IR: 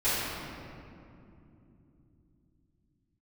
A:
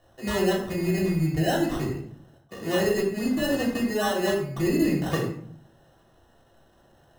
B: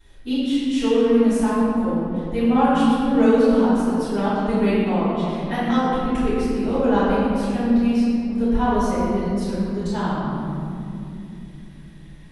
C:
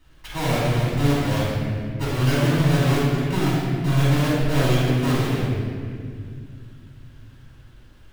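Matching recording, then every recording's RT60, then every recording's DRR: B; 0.60, 2.9, 2.1 s; -2.5, -17.0, -10.5 dB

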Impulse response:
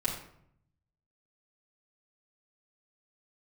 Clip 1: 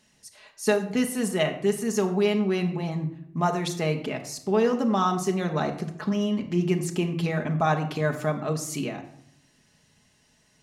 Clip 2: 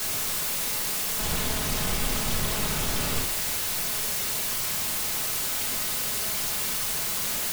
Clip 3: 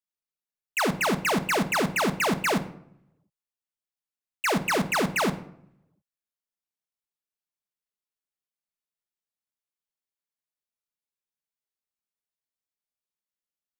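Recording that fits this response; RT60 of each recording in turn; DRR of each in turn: 2; 0.70, 0.70, 0.70 s; 3.5, -6.5, 8.5 dB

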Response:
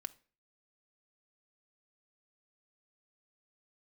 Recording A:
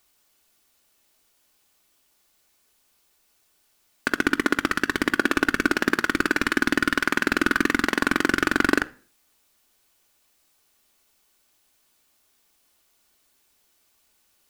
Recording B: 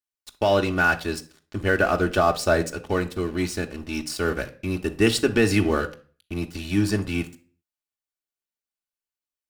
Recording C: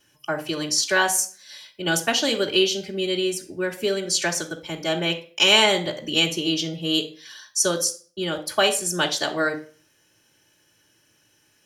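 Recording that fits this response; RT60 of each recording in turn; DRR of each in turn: A; 0.40, 0.40, 0.40 s; 9.0, 2.5, -6.0 dB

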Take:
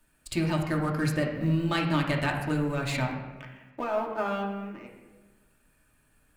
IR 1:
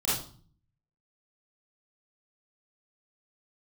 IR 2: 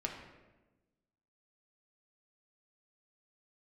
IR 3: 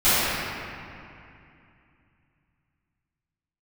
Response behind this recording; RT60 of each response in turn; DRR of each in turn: 2; 0.45, 1.1, 2.6 s; -11.5, -0.5, -20.5 dB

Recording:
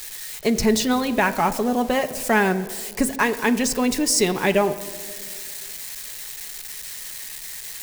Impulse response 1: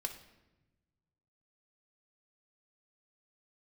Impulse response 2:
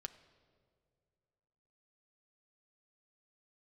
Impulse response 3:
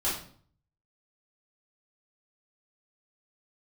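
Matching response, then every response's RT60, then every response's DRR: 2; 1.0 s, not exponential, 0.50 s; 3.0, 7.0, -10.0 dB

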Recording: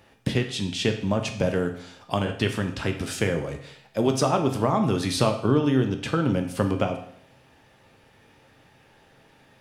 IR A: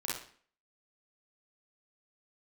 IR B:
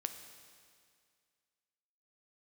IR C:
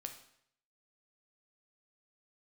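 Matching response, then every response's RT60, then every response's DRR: C; 0.50, 2.1, 0.70 s; -6.0, 7.0, 4.5 dB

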